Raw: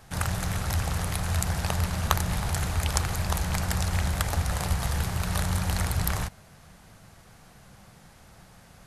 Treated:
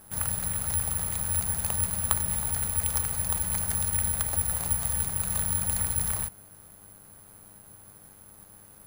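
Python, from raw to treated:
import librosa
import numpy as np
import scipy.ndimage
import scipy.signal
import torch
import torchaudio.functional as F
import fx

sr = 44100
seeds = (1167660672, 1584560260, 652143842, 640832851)

y = fx.dmg_buzz(x, sr, base_hz=100.0, harmonics=16, level_db=-53.0, tilt_db=-4, odd_only=False)
y = (np.kron(scipy.signal.resample_poly(y, 1, 4), np.eye(4)[0]) * 4)[:len(y)]
y = y * librosa.db_to_amplitude(-7.5)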